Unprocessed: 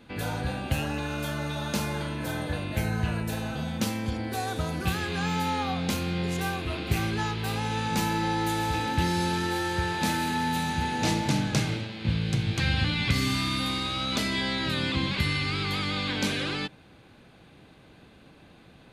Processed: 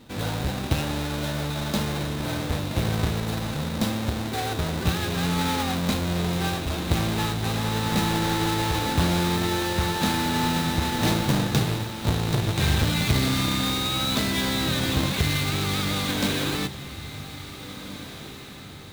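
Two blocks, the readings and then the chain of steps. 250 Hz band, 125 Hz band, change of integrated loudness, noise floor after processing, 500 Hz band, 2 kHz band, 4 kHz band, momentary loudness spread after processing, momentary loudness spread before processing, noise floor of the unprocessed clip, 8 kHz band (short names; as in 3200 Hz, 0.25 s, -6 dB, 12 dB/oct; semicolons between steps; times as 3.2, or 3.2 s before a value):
+3.5 dB, +4.0 dB, +3.5 dB, -39 dBFS, +4.0 dB, +1.0 dB, +4.0 dB, 11 LU, 5 LU, -54 dBFS, +5.5 dB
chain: half-waves squared off; bell 3800 Hz +8.5 dB 0.23 oct; diffused feedback echo 1.792 s, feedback 45%, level -13.5 dB; gain -2 dB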